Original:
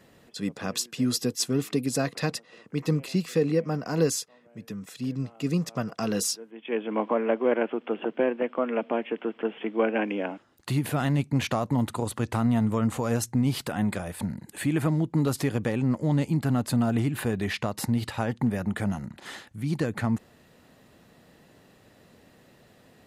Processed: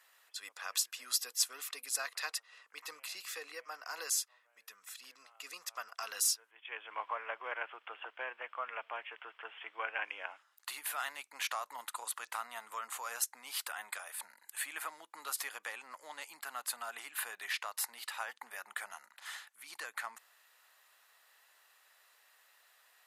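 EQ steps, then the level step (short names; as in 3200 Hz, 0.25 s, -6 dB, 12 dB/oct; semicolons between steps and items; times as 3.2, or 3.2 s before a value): ladder high-pass 880 Hz, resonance 25%; bell 13000 Hz +8.5 dB 1.1 oct; 0.0 dB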